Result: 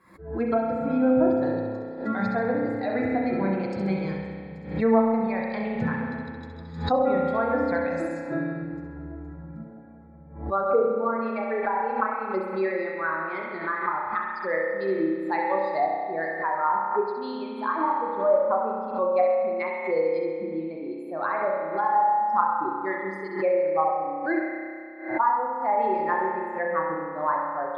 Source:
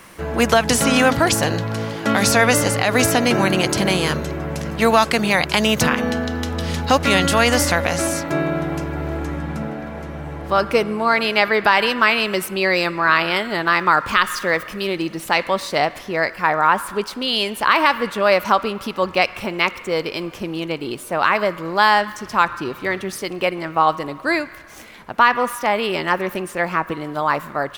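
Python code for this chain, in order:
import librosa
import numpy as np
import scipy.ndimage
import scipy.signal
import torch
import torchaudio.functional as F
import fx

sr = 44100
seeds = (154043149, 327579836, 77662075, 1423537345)

p1 = fx.bin_expand(x, sr, power=2.0)
p2 = scipy.signal.sosfilt(scipy.signal.butter(2, 68.0, 'highpass', fs=sr, output='sos'), p1)
p3 = fx.low_shelf(p2, sr, hz=200.0, db=-11.0)
p4 = fx.env_lowpass_down(p3, sr, base_hz=720.0, full_db=-17.5)
p5 = fx.rider(p4, sr, range_db=4, speed_s=0.5)
p6 = np.convolve(p5, np.full(15, 1.0 / 15))[:len(p5)]
p7 = p6 + fx.echo_feedback(p6, sr, ms=66, feedback_pct=46, wet_db=-7, dry=0)
p8 = fx.rev_spring(p7, sr, rt60_s=2.2, pass_ms=(31,), chirp_ms=55, drr_db=-1.5)
y = fx.pre_swell(p8, sr, db_per_s=99.0)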